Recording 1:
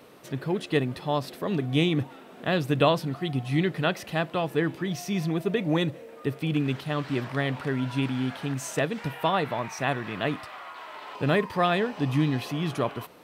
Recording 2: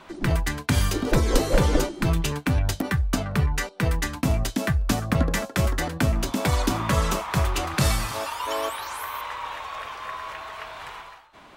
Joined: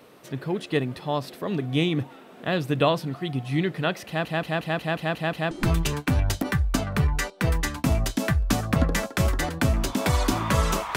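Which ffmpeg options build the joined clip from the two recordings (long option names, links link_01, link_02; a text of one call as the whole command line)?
ffmpeg -i cue0.wav -i cue1.wav -filter_complex "[0:a]apad=whole_dur=10.96,atrim=end=10.96,asplit=8[link_01][link_02][link_03][link_04][link_05][link_06][link_07][link_08];[link_01]atrim=end=4.252[link_09];[link_02]atrim=start=4.068:end=4.252[link_10];[link_03]atrim=start=4.068:end=4.252[link_11];[link_04]atrim=start=4.068:end=4.252[link_12];[link_05]atrim=start=4.068:end=4.252[link_13];[link_06]atrim=start=4.068:end=4.252[link_14];[link_07]atrim=start=4.068:end=4.252[link_15];[link_08]atrim=start=4.068:end=4.252[link_16];[1:a]atrim=start=1.898:end=7.35[link_17];[link_09][link_10]acrossfade=duration=0.004:curve1=hsin:curve2=hsin[link_18];[link_18][link_11]acrossfade=duration=0.004:curve1=hsin:curve2=hsin[link_19];[link_19][link_12]acrossfade=duration=0.004:curve1=hsin:curve2=hsin[link_20];[link_20][link_13]acrossfade=duration=0.004:curve1=hsin:curve2=hsin[link_21];[link_21][link_14]acrossfade=duration=0.004:curve1=hsin:curve2=hsin[link_22];[link_22][link_15]acrossfade=duration=0.004:curve1=hsin:curve2=hsin[link_23];[link_23][link_16]acrossfade=duration=0.004:curve1=hsin:curve2=hsin[link_24];[link_24][link_17]acrossfade=duration=0.004:curve1=hsin:curve2=hsin" out.wav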